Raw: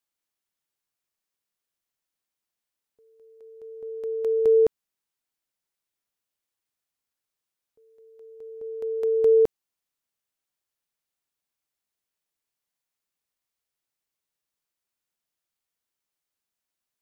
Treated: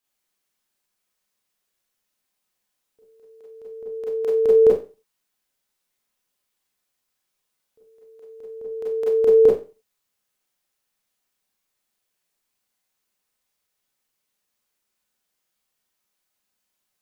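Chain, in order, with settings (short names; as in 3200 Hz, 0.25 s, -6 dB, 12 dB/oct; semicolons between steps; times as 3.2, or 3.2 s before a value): Schroeder reverb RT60 0.32 s, combs from 30 ms, DRR -5 dB; gain +2.5 dB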